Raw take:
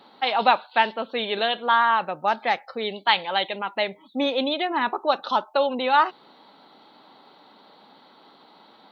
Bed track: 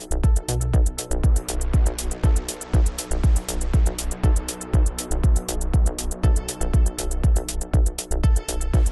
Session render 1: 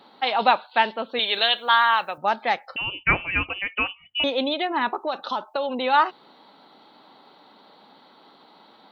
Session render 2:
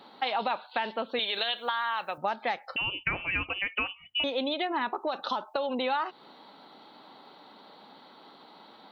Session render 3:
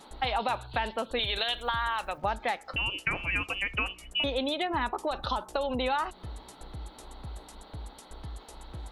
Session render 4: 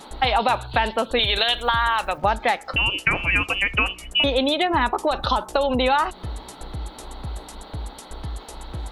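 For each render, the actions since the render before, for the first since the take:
1.19–2.18 tilt +4 dB/oct; 2.76–4.24 inverted band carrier 3200 Hz; 4.94–5.76 compressor, threshold -21 dBFS
limiter -12 dBFS, peak gain reduction 8 dB; compressor 4:1, threshold -27 dBFS, peak gain reduction 9.5 dB
add bed track -23 dB
gain +9.5 dB

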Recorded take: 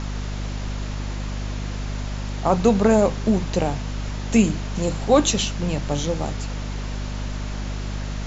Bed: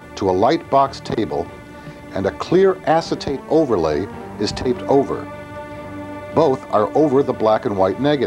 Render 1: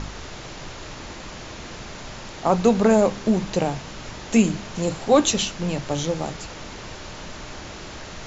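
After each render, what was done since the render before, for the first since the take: de-hum 50 Hz, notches 5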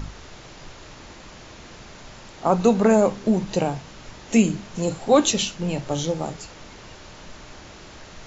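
noise print and reduce 6 dB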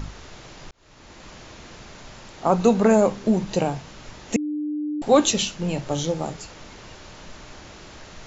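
0.71–1.28 fade in linear; 4.36–5.02 bleep 299 Hz -24 dBFS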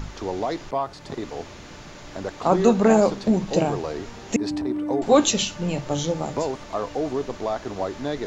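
add bed -11.5 dB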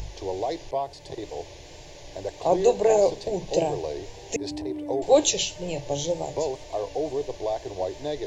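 wow and flutter 43 cents; fixed phaser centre 540 Hz, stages 4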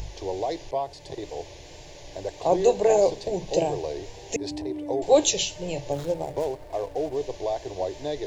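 5.92–7.16 median filter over 15 samples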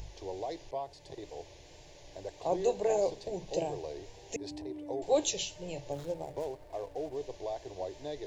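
gain -9.5 dB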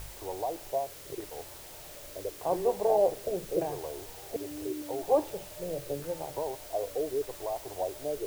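LFO low-pass saw down 0.83 Hz 390–1600 Hz; requantised 8-bit, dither triangular

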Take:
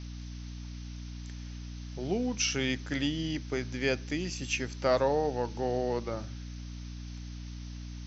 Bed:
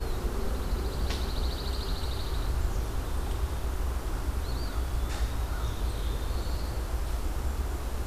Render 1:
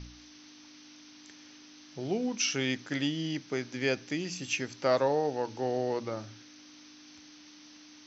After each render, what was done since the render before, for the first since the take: de-hum 60 Hz, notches 4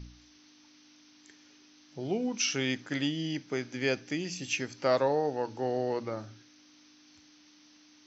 noise print and reduce 6 dB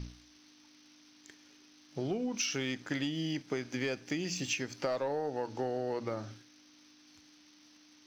sample leveller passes 1; compressor 6:1, threshold -31 dBFS, peak gain reduction 11 dB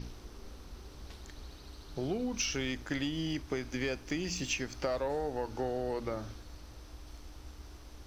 add bed -18 dB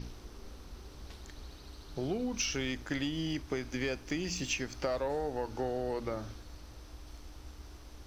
nothing audible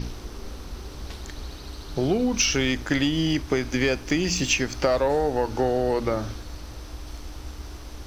gain +11.5 dB

